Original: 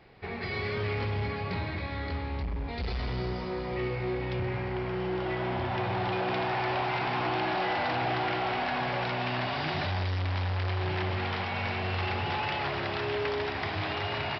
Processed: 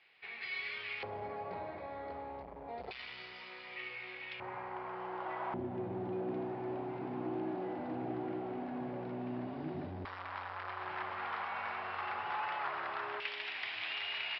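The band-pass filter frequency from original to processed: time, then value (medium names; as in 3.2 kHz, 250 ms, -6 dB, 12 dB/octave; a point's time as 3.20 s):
band-pass filter, Q 2.1
2.7 kHz
from 1.03 s 670 Hz
from 2.91 s 2.6 kHz
from 4.40 s 1 kHz
from 5.54 s 280 Hz
from 10.05 s 1.2 kHz
from 13.20 s 2.7 kHz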